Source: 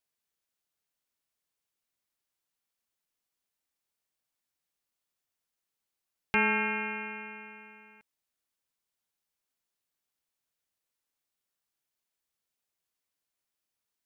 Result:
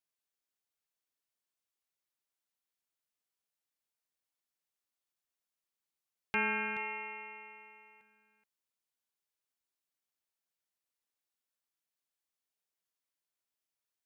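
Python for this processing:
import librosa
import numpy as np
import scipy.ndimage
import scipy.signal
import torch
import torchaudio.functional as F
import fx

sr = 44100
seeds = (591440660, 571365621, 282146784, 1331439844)

y = fx.low_shelf(x, sr, hz=180.0, db=-6.0)
y = y + 10.0 ** (-12.0 / 20.0) * np.pad(y, (int(426 * sr / 1000.0), 0))[:len(y)]
y = F.gain(torch.from_numpy(y), -5.5).numpy()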